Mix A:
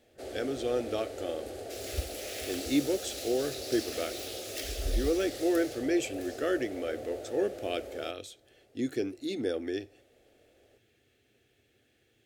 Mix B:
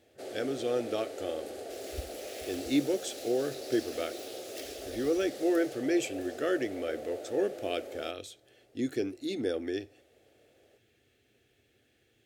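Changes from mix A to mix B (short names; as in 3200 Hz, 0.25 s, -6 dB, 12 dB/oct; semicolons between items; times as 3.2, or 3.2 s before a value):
first sound: add HPF 210 Hz 12 dB/oct; second sound -6.0 dB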